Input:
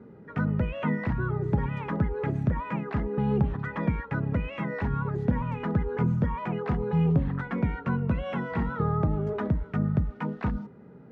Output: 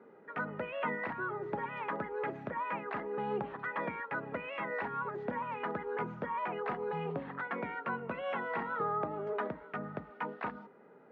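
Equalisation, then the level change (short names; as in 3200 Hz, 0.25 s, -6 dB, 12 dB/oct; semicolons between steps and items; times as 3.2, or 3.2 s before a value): BPF 510–3000 Hz; 0.0 dB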